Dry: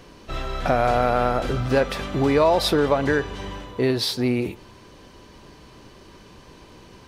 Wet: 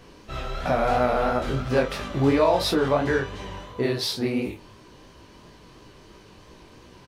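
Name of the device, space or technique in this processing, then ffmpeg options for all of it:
double-tracked vocal: -filter_complex "[0:a]asplit=2[a][b];[b]adelay=29,volume=-7.5dB[c];[a][c]amix=inputs=2:normalize=0,flanger=delay=16:depth=6.6:speed=2.9"

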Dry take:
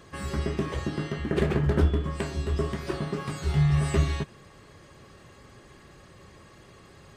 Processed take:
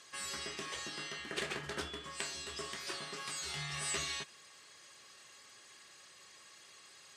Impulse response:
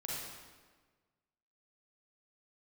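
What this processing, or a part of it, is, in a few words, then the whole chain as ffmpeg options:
piezo pickup straight into a mixer: -af "lowpass=7.4k,aderivative,volume=8dB"

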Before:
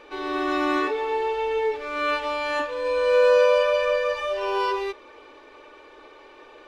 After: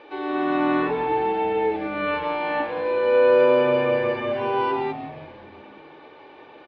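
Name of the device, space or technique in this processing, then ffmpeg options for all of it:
frequency-shifting delay pedal into a guitar cabinet: -filter_complex "[0:a]acrossover=split=3100[a][b];[b]acompressor=threshold=-51dB:ratio=4:attack=1:release=60[c];[a][c]amix=inputs=2:normalize=0,asplit=8[d][e][f][g][h][i][j][k];[e]adelay=174,afreqshift=-120,volume=-12dB[l];[f]adelay=348,afreqshift=-240,volume=-16dB[m];[g]adelay=522,afreqshift=-360,volume=-20dB[n];[h]adelay=696,afreqshift=-480,volume=-24dB[o];[i]adelay=870,afreqshift=-600,volume=-28.1dB[p];[j]adelay=1044,afreqshift=-720,volume=-32.1dB[q];[k]adelay=1218,afreqshift=-840,volume=-36.1dB[r];[d][l][m][n][o][p][q][r]amix=inputs=8:normalize=0,highpass=94,equalizer=f=310:t=q:w=4:g=5,equalizer=f=800:t=q:w=4:g=7,equalizer=f=1.2k:t=q:w=4:g=-4,lowpass=f=4.1k:w=0.5412,lowpass=f=4.1k:w=1.3066"

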